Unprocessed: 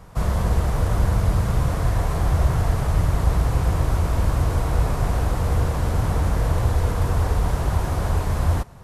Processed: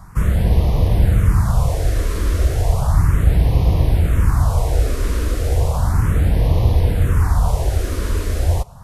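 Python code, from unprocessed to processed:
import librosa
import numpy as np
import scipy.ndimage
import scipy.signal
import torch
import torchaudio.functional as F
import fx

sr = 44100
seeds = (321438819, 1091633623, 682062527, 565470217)

y = fx.phaser_stages(x, sr, stages=4, low_hz=130.0, high_hz=1500.0, hz=0.34, feedback_pct=5)
y = y * librosa.db_to_amplitude(5.5)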